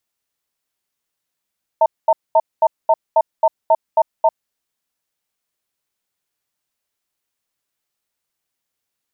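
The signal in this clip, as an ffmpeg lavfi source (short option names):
-f lavfi -i "aevalsrc='0.266*(sin(2*PI*643*t)+sin(2*PI*905*t))*clip(min(mod(t,0.27),0.05-mod(t,0.27))/0.005,0,1)':d=2.69:s=44100"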